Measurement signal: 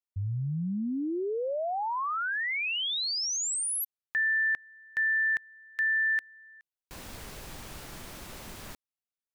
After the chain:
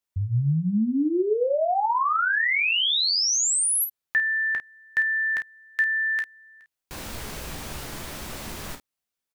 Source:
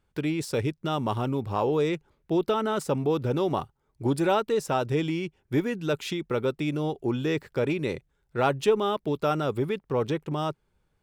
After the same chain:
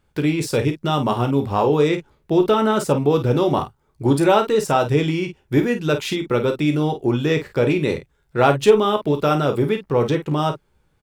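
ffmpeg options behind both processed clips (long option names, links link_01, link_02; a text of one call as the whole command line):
ffmpeg -i in.wav -af "aecho=1:1:14|33|50:0.335|0.251|0.316,volume=7dB" out.wav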